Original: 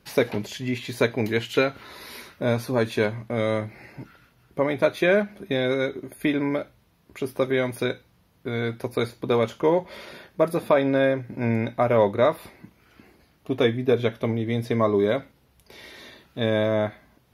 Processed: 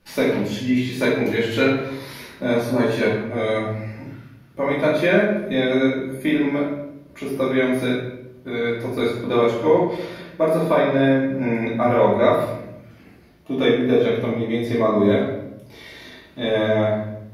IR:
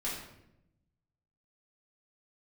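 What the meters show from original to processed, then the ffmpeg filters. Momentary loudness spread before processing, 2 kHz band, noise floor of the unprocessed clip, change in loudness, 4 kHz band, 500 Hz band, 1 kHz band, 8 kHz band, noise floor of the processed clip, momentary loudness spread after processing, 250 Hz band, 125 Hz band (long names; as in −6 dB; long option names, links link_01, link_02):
17 LU, +4.0 dB, −62 dBFS, +4.0 dB, +3.5 dB, +3.5 dB, +4.0 dB, can't be measured, −47 dBFS, 17 LU, +6.0 dB, +2.0 dB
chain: -filter_complex "[1:a]atrim=start_sample=2205[link_01];[0:a][link_01]afir=irnorm=-1:irlink=0"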